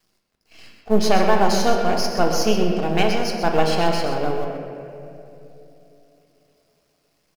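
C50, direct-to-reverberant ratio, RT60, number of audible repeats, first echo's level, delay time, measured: 3.0 dB, 1.0 dB, 3.0 s, 1, −9.0 dB, 127 ms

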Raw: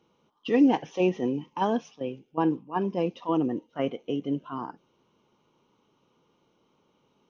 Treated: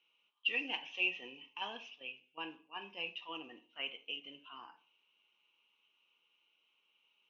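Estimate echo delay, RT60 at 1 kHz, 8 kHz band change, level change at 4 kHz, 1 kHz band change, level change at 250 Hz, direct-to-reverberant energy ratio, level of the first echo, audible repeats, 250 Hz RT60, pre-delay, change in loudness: no echo audible, 0.45 s, can't be measured, +4.5 dB, −17.0 dB, −28.0 dB, 7.5 dB, no echo audible, no echo audible, 0.45 s, 7 ms, −12.0 dB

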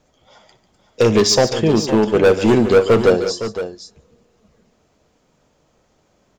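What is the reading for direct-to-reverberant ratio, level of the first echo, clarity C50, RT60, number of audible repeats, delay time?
no reverb audible, −17.0 dB, no reverb audible, no reverb audible, 3, 61 ms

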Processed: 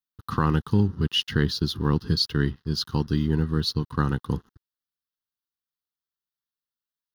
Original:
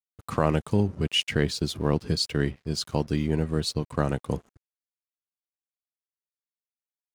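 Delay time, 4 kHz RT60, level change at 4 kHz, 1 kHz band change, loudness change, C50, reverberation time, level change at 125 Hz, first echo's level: no echo audible, no reverb audible, +2.0 dB, +1.5 dB, +2.0 dB, no reverb audible, no reverb audible, +3.5 dB, no echo audible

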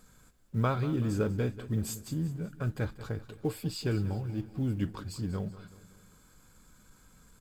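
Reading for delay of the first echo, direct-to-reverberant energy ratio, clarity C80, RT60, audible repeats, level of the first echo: 189 ms, no reverb audible, no reverb audible, no reverb audible, 4, −15.5 dB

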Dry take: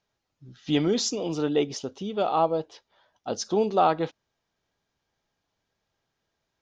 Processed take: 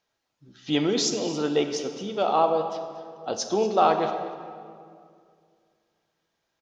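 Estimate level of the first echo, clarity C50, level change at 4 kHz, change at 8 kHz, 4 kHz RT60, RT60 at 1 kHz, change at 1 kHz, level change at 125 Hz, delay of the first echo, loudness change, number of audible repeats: −16.0 dB, 7.0 dB, +3.0 dB, can't be measured, 1.5 s, 2.1 s, +2.5 dB, −2.5 dB, 236 ms, +1.0 dB, 1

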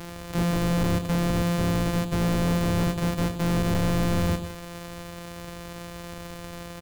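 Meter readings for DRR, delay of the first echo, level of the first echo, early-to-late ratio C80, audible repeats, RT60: no reverb audible, 97 ms, −11.0 dB, no reverb audible, 2, no reverb audible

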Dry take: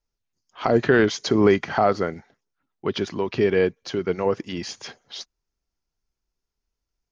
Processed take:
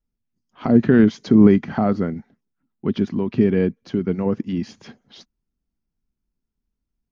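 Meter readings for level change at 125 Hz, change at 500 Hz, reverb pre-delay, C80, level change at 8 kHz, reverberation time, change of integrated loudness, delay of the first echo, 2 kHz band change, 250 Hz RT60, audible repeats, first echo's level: +7.5 dB, −1.5 dB, no reverb audible, no reverb audible, can't be measured, no reverb audible, +3.5 dB, no echo audible, −6.0 dB, no reverb audible, no echo audible, no echo audible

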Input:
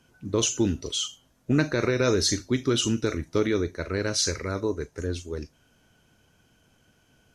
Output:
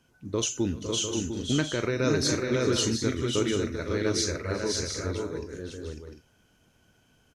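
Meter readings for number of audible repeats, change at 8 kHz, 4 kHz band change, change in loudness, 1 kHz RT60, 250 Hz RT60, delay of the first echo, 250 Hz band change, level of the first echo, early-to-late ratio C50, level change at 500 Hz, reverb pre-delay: 5, −1.5 dB, −1.5 dB, −2.0 dB, no reverb audible, no reverb audible, 391 ms, −1.5 dB, −19.5 dB, no reverb audible, −1.5 dB, no reverb audible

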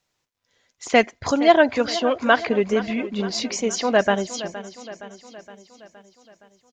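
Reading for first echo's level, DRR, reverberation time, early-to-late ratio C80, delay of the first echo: −15.0 dB, no reverb audible, no reverb audible, no reverb audible, 467 ms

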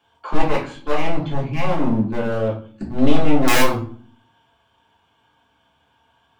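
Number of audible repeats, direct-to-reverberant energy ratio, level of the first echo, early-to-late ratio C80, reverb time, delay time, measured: no echo audible, −5.5 dB, no echo audible, 12.5 dB, 0.45 s, no echo audible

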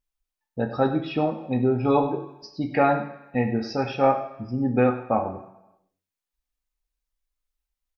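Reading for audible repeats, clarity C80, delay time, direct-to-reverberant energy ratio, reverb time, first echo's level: 1, 11.0 dB, 99 ms, 2.0 dB, 0.95 s, −14.0 dB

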